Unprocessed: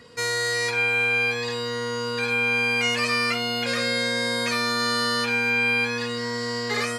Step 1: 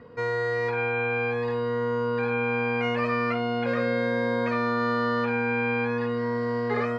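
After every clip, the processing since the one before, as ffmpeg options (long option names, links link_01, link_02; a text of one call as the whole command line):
ffmpeg -i in.wav -af "lowpass=1200,volume=3dB" out.wav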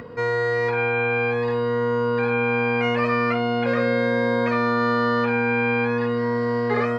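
ffmpeg -i in.wav -af "acompressor=mode=upward:threshold=-37dB:ratio=2.5,volume=4.5dB" out.wav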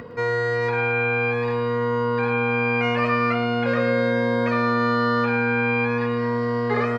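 ffmpeg -i in.wav -af "aecho=1:1:110|220|330|440|550|660:0.224|0.123|0.0677|0.0372|0.0205|0.0113" out.wav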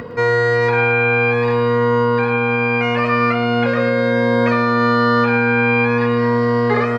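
ffmpeg -i in.wav -af "alimiter=limit=-14dB:level=0:latency=1:release=407,volume=7.5dB" out.wav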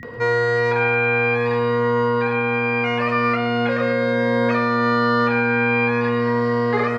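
ffmpeg -i in.wav -filter_complex "[0:a]acrossover=split=200[link_01][link_02];[link_02]adelay=30[link_03];[link_01][link_03]amix=inputs=2:normalize=0,aeval=exprs='val(0)+0.0141*sin(2*PI*1900*n/s)':channel_layout=same,volume=-3dB" out.wav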